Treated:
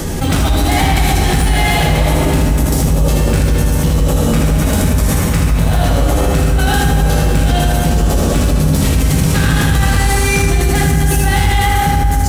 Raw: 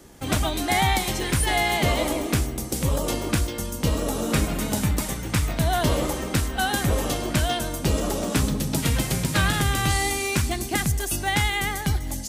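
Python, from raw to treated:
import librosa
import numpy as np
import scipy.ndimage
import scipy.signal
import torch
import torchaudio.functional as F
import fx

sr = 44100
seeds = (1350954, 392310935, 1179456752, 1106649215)

p1 = fx.low_shelf(x, sr, hz=97.0, db=11.5)
p2 = 10.0 ** (-18.0 / 20.0) * np.tanh(p1 / 10.0 ** (-18.0 / 20.0))
p3 = p2 + fx.echo_single(p2, sr, ms=79, db=-4.0, dry=0)
p4 = fx.rev_fdn(p3, sr, rt60_s=3.4, lf_ratio=1.0, hf_ratio=0.5, size_ms=36.0, drr_db=-3.0)
y = fx.env_flatten(p4, sr, amount_pct=70)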